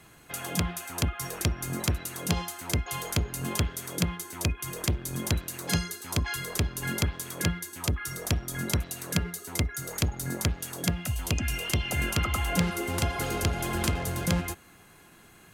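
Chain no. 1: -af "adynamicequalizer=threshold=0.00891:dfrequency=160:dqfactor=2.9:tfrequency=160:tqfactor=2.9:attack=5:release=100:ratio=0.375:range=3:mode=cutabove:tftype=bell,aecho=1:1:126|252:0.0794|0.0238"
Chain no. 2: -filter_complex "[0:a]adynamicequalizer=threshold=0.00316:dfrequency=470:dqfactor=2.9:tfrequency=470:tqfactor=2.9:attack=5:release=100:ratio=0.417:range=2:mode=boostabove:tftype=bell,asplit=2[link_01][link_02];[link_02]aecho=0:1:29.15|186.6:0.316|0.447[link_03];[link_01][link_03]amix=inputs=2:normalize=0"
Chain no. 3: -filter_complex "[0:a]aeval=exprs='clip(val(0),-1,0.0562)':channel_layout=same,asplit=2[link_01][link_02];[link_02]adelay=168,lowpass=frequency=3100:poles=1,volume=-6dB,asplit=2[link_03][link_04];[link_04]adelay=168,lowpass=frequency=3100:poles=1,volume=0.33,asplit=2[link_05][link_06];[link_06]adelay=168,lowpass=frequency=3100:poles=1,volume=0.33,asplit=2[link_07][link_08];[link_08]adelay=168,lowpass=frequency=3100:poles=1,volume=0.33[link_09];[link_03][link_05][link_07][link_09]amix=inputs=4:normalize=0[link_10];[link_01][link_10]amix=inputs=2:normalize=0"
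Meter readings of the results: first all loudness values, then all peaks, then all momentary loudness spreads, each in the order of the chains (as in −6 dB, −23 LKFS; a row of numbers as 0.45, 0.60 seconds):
−30.5, −29.0, −30.5 LKFS; −9.5, −9.0, −9.0 dBFS; 4, 4, 4 LU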